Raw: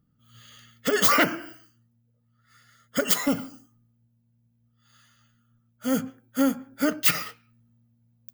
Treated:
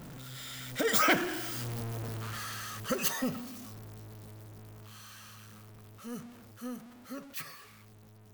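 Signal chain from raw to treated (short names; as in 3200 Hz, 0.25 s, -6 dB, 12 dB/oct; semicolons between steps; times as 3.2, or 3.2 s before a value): zero-crossing step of -28 dBFS; Doppler pass-by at 1.76, 33 m/s, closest 21 m; gain -2.5 dB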